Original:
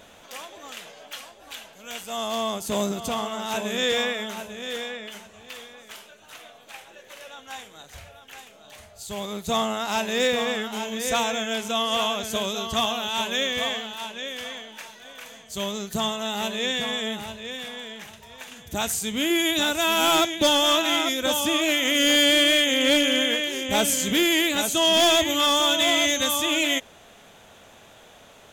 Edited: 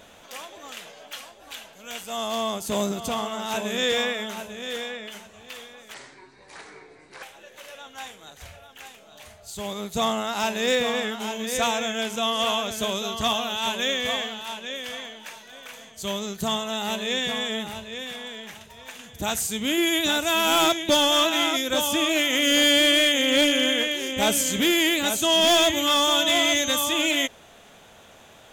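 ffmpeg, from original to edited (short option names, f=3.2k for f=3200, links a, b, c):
-filter_complex "[0:a]asplit=3[a][b][c];[a]atrim=end=5.944[d];[b]atrim=start=5.94:end=6.75,asetpts=PTS-STARTPTS,asetrate=27783,aresample=44100[e];[c]atrim=start=6.746[f];[d][e]acrossfade=d=0.004:c1=hsin:c2=hsin[g];[g][f]acrossfade=d=0.004:c1=hsin:c2=hsin"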